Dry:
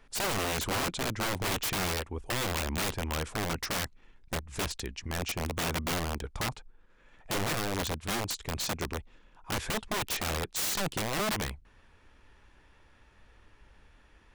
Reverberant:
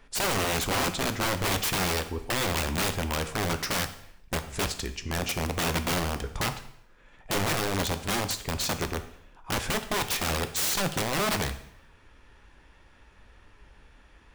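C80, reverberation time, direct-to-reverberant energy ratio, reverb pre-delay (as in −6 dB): 15.0 dB, 0.75 s, 8.5 dB, 4 ms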